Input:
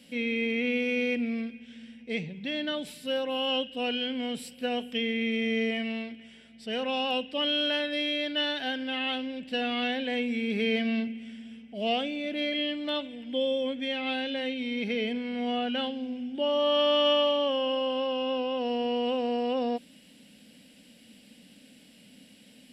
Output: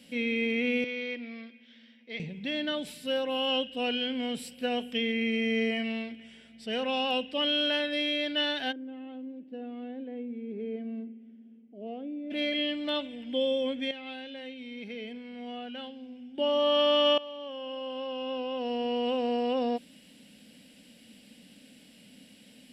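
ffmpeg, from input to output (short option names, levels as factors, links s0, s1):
-filter_complex "[0:a]asettb=1/sr,asplit=3[s0][s1][s2];[s0]atrim=end=0.844[s3];[s1]atrim=start=0.84:end=2.2,asetpts=PTS-STARTPTS,afade=t=in:d=0.004:c=qsin,afade=t=out:st=1.356:d=0.004:c=qsin,highpass=440,equalizer=f=450:t=q:w=4:g=-7,equalizer=f=770:t=q:w=4:g=-9,equalizer=f=1500:t=q:w=4:g=-5,equalizer=f=2600:t=q:w=4:g=-8,lowpass=f=4700:w=0.5412,lowpass=f=4700:w=1.3066[s4];[s2]atrim=start=2.196[s5];[s3][s4]acrossfade=d=0.004:c1=hsin:c2=qsin[s6];[s6][s5]acrossfade=d=0.004:c1=qsin:c2=hsin,asettb=1/sr,asplit=3[s7][s8][s9];[s7]atrim=end=5.124[s10];[s8]atrim=start=5.12:end=5.84,asetpts=PTS-STARTPTS,afade=t=in:d=0.004:c=qsin,afade=t=out:st=0.716:d=0.004:c=qsin,asuperstop=centerf=3500:order=20:qfactor=6.1[s11];[s9]atrim=start=5.836[s12];[s10][s11]acrossfade=d=0.004:c1=hsin:c2=qsin[s13];[s13][s12]acrossfade=d=0.004:c1=qsin:c2=hsin,asplit=3[s14][s15][s16];[s14]afade=t=out:st=8.71:d=0.02[s17];[s15]bandpass=f=330:t=q:w=3.1,afade=t=in:st=8.71:d=0.02,afade=t=out:st=12.3:d=0.02[s18];[s16]afade=t=in:st=12.3:d=0.02[s19];[s17][s18][s19]amix=inputs=3:normalize=0,asplit=4[s20][s21][s22][s23];[s20]atrim=end=13.912[s24];[s21]atrim=start=13.908:end=16.382,asetpts=PTS-STARTPTS,volume=0.316[s25];[s22]atrim=start=16.378:end=17.18,asetpts=PTS-STARTPTS,afade=t=out:st=0.798:d=0.004:c=hsin:silence=0.112202[s26];[s23]atrim=start=17.18,asetpts=PTS-STARTPTS,afade=t=in:d=2.09:silence=0.112202[s27];[s24][s25]acrossfade=d=0.004:c1=hsin:c2=hsin[s28];[s26][s27]concat=n=2:v=0:a=1[s29];[s28][s29]acrossfade=d=0.004:c1=hsin:c2=hsin"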